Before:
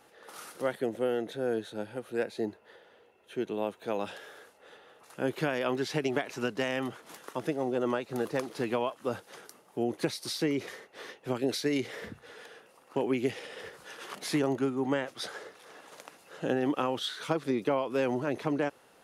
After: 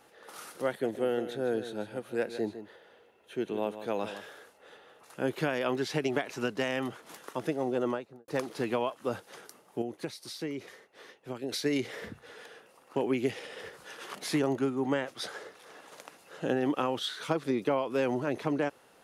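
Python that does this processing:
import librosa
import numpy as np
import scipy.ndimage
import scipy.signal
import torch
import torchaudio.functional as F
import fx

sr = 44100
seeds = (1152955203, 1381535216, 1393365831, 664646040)

y = fx.echo_single(x, sr, ms=155, db=-11.5, at=(0.83, 4.37), fade=0.02)
y = fx.studio_fade_out(y, sr, start_s=7.79, length_s=0.49)
y = fx.edit(y, sr, fx.clip_gain(start_s=9.82, length_s=1.7, db=-7.0), tone=tone)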